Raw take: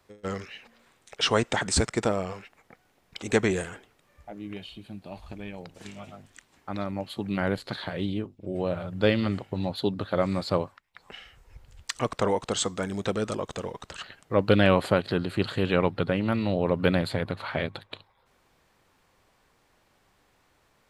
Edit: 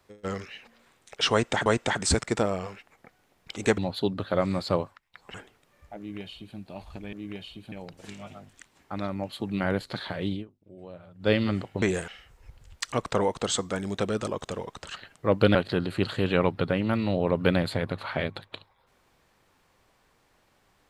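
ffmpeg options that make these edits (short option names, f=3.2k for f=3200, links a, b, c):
-filter_complex "[0:a]asplit=11[a][b][c][d][e][f][g][h][i][j][k];[a]atrim=end=1.662[l];[b]atrim=start=1.318:end=3.442[m];[c]atrim=start=9.588:end=11.152[n];[d]atrim=start=3.698:end=5.492[o];[e]atrim=start=4.338:end=4.932[p];[f]atrim=start=5.488:end=8.22,asetpts=PTS-STARTPTS,afade=t=out:st=2.612:d=0.12:silence=0.16788[q];[g]atrim=start=8.22:end=8.96,asetpts=PTS-STARTPTS,volume=-15.5dB[r];[h]atrim=start=8.96:end=9.592,asetpts=PTS-STARTPTS,afade=t=in:d=0.12:silence=0.16788[s];[i]atrim=start=3.438:end=3.702[t];[j]atrim=start=11.148:end=14.622[u];[k]atrim=start=14.938[v];[l][m]acrossfade=d=0.004:c1=hsin:c2=hsin[w];[w][n]acrossfade=d=0.004:c1=hsin:c2=hsin[x];[x][o]acrossfade=d=0.004:c1=hsin:c2=hsin[y];[y][p]acrossfade=d=0.004:c1=hsin:c2=hsin[z];[q][r][s]concat=n=3:v=0:a=1[aa];[z][aa]acrossfade=d=0.004:c1=hsin:c2=hsin[ab];[ab][t]acrossfade=d=0.004:c1=hsin:c2=hsin[ac];[ac][u]acrossfade=d=0.004:c1=hsin:c2=hsin[ad];[ad][v]acrossfade=d=0.004:c1=hsin:c2=hsin"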